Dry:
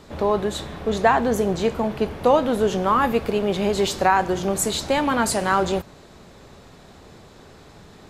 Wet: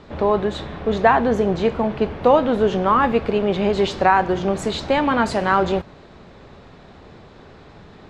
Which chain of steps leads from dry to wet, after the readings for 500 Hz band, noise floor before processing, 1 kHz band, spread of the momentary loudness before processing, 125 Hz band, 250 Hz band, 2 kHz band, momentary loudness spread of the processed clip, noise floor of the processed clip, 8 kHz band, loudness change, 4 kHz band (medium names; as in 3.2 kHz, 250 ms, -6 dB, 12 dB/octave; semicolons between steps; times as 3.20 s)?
+2.5 dB, -47 dBFS, +2.5 dB, 6 LU, +2.5 dB, +2.5 dB, +2.0 dB, 6 LU, -45 dBFS, -12.0 dB, +2.0 dB, -1.0 dB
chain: low-pass 3.5 kHz 12 dB/octave; trim +2.5 dB